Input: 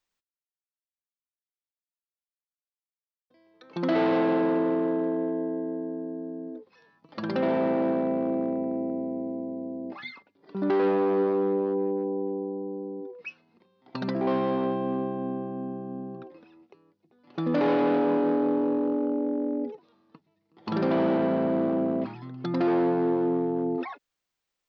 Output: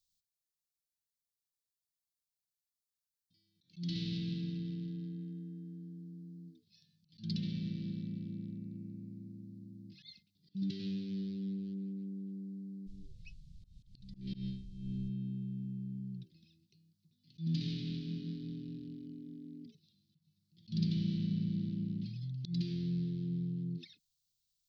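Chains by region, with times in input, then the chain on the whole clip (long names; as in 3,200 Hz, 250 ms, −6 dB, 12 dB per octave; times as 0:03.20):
0:12.86–0:15.08: amplitude tremolo 1.6 Hz, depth 88% + background noise brown −52 dBFS + high-frequency loss of the air 80 metres
whole clip: elliptic band-stop filter 170–4,000 Hz, stop band 80 dB; parametric band 260 Hz −11.5 dB 0.23 octaves; volume swells 137 ms; level +4 dB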